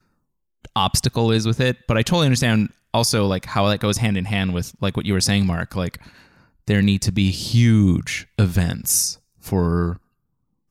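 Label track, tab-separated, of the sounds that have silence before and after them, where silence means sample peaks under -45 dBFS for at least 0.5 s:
0.650000	9.980000	sound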